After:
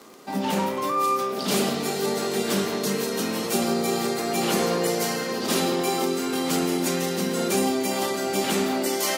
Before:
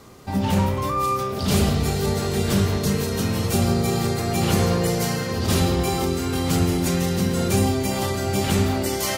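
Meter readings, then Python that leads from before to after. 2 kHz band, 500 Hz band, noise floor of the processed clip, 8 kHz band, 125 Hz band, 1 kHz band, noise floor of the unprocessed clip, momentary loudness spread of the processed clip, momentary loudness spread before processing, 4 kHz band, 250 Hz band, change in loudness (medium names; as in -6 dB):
0.0 dB, 0.0 dB, -29 dBFS, 0.0 dB, -14.0 dB, 0.0 dB, -27 dBFS, 3 LU, 3 LU, 0.0 dB, -3.0 dB, -2.5 dB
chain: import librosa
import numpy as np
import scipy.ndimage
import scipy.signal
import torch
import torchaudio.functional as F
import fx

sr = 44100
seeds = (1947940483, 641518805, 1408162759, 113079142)

y = scipy.signal.sosfilt(scipy.signal.butter(4, 220.0, 'highpass', fs=sr, output='sos'), x)
y = fx.dmg_crackle(y, sr, seeds[0], per_s=24.0, level_db=-31.0)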